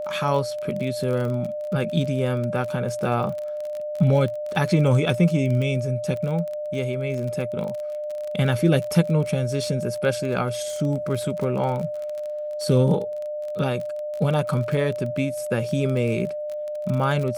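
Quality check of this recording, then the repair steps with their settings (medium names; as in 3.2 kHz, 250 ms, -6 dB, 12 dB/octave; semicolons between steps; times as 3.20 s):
crackle 31 per s -28 dBFS
whine 600 Hz -27 dBFS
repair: de-click; band-stop 600 Hz, Q 30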